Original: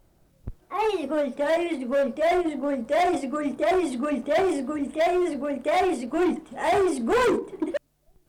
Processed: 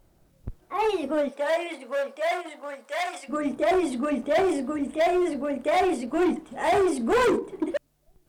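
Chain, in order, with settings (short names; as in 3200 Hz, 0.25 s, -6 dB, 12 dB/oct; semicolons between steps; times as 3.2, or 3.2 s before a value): 1.28–3.28 HPF 470 Hz -> 1200 Hz 12 dB/oct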